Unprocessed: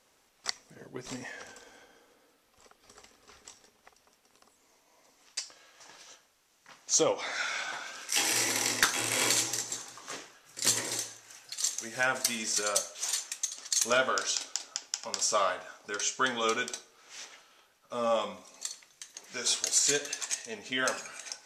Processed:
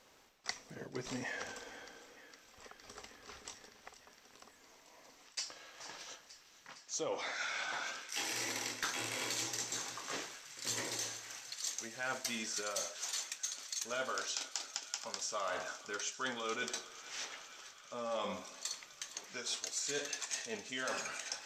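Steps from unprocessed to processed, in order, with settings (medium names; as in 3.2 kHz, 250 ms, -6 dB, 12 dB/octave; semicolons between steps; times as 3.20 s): peaking EQ 10 kHz -12.5 dB 0.48 oct; reverse; compression 5:1, threshold -41 dBFS, peak gain reduction 19.5 dB; reverse; feedback echo behind a high-pass 461 ms, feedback 80%, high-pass 1.5 kHz, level -15 dB; trim +3.5 dB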